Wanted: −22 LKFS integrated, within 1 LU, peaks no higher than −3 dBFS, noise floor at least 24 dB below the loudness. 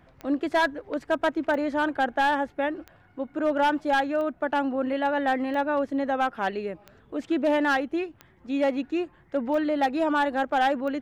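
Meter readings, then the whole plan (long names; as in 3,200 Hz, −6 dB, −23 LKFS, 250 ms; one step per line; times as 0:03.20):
number of clicks 9; integrated loudness −26.0 LKFS; sample peak −16.5 dBFS; target loudness −22.0 LKFS
→ click removal
level +4 dB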